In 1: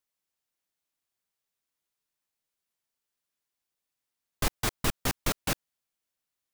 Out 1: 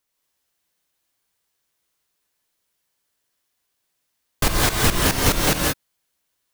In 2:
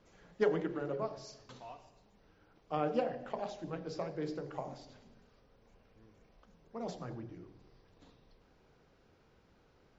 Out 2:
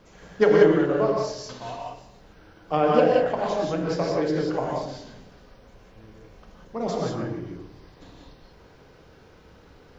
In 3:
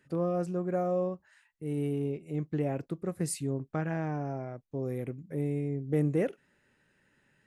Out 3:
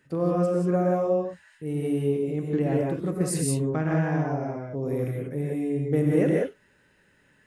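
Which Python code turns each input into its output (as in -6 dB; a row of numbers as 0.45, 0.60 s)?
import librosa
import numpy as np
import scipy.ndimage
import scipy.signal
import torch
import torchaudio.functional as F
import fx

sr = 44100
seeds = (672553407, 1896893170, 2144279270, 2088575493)

y = fx.rev_gated(x, sr, seeds[0], gate_ms=210, shape='rising', drr_db=-1.5)
y = y * 10.0 ** (-26 / 20.0) / np.sqrt(np.mean(np.square(y)))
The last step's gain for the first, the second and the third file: +8.0, +11.0, +3.0 dB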